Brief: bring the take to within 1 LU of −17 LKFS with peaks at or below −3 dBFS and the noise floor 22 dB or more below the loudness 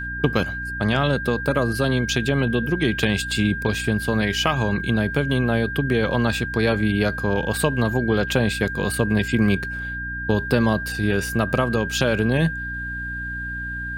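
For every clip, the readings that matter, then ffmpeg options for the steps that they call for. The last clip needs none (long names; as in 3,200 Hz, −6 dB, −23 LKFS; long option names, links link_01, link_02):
mains hum 60 Hz; hum harmonics up to 300 Hz; level of the hum −32 dBFS; interfering tone 1,600 Hz; level of the tone −28 dBFS; integrated loudness −22.0 LKFS; sample peak −3.5 dBFS; target loudness −17.0 LKFS
→ -af "bandreject=frequency=60:width_type=h:width=6,bandreject=frequency=120:width_type=h:width=6,bandreject=frequency=180:width_type=h:width=6,bandreject=frequency=240:width_type=h:width=6,bandreject=frequency=300:width_type=h:width=6"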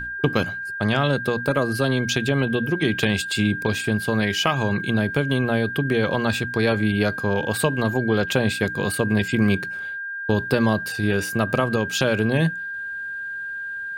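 mains hum none found; interfering tone 1,600 Hz; level of the tone −28 dBFS
→ -af "bandreject=frequency=1600:width=30"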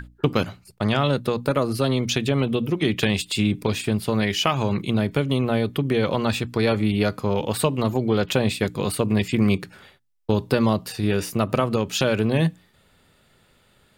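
interfering tone none found; integrated loudness −23.0 LKFS; sample peak −4.5 dBFS; target loudness −17.0 LKFS
→ -af "volume=6dB,alimiter=limit=-3dB:level=0:latency=1"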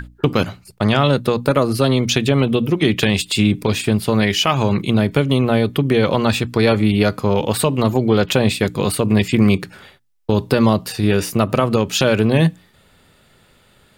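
integrated loudness −17.0 LKFS; sample peak −3.0 dBFS; background noise floor −54 dBFS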